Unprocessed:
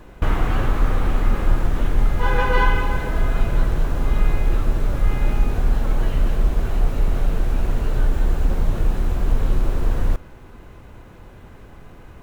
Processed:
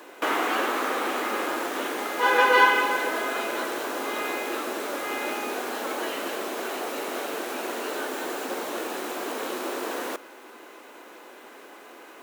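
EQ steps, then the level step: steep high-pass 280 Hz 36 dB/oct; tilt +1.5 dB/oct; +3.5 dB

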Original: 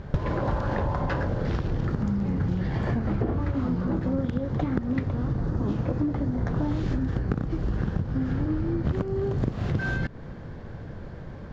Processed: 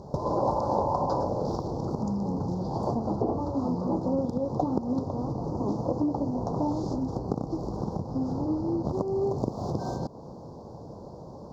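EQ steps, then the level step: HPF 470 Hz 6 dB/oct; elliptic band-stop 950–4900 Hz, stop band 80 dB; dynamic EQ 790 Hz, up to +3 dB, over -50 dBFS, Q 0.95; +5.5 dB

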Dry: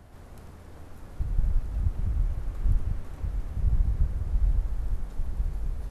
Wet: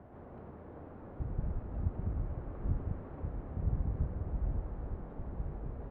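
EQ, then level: band-pass 460 Hz, Q 0.57; air absorption 480 m; +4.5 dB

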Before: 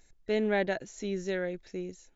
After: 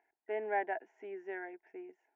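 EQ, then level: ladder band-pass 910 Hz, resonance 25%; air absorption 130 m; fixed phaser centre 810 Hz, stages 8; +12.0 dB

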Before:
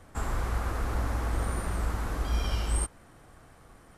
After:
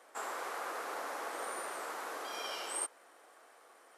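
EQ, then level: HPF 420 Hz 24 dB/oct; -2.0 dB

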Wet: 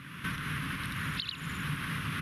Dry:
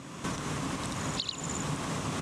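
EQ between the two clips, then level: EQ curve 160 Hz 0 dB, 730 Hz -20 dB, 1500 Hz +7 dB, 3000 Hz +3 dB, 5100 Hz -9 dB, 7600 Hz -22 dB, 11000 Hz +8 dB; 0.0 dB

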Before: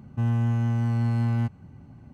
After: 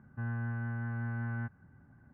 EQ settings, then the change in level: ladder low-pass 1700 Hz, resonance 80%; 0.0 dB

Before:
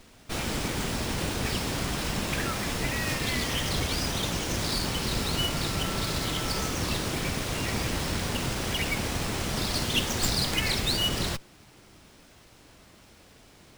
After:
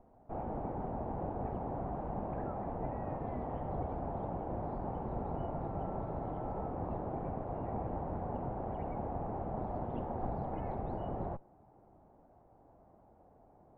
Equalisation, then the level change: ladder low-pass 870 Hz, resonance 60%; +1.5 dB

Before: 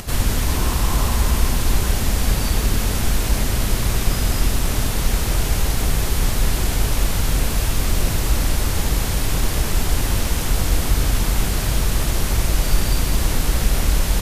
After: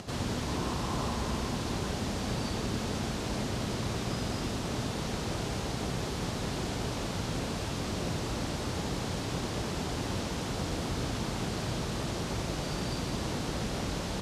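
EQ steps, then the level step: BPF 130–4800 Hz; bell 2100 Hz -6.5 dB 1.7 oct; -5.5 dB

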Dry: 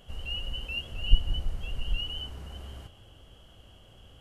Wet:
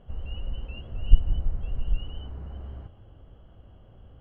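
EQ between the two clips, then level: LPF 1400 Hz 12 dB/oct; low shelf 340 Hz +5.5 dB; -1.0 dB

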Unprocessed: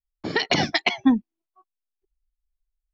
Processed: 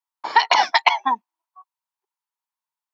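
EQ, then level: resonant high-pass 940 Hz, resonance Q 8.4; +2.0 dB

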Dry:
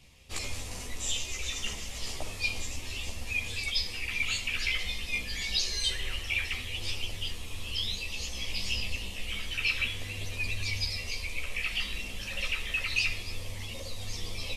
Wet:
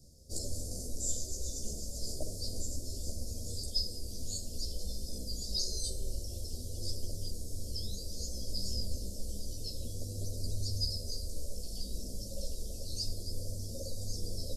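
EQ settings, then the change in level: Chebyshev band-stop 620–4800 Hz, order 4; dynamic EQ 5700 Hz, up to -5 dB, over -50 dBFS, Q 3.2; +1.5 dB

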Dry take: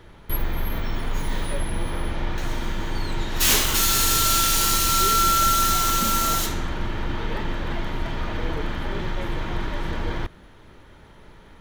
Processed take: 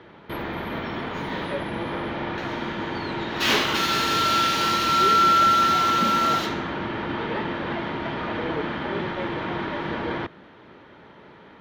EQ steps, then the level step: HPF 190 Hz 12 dB/oct; air absorption 300 m; high shelf 4500 Hz +5.5 dB; +5.0 dB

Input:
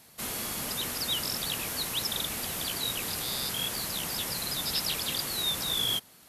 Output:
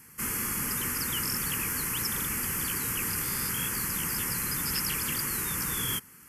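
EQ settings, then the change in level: fixed phaser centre 1600 Hz, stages 4; +5.5 dB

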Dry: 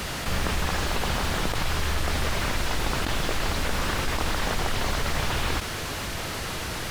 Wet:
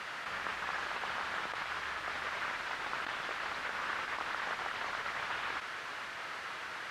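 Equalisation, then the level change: band-pass 1500 Hz, Q 1.3; -4.0 dB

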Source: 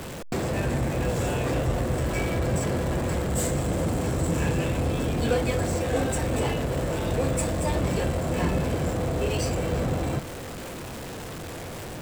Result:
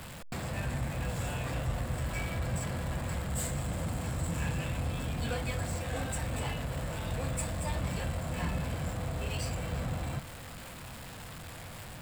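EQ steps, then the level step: bell 380 Hz -12.5 dB 1.2 oct; bell 6000 Hz -6.5 dB 0.25 oct; -5.5 dB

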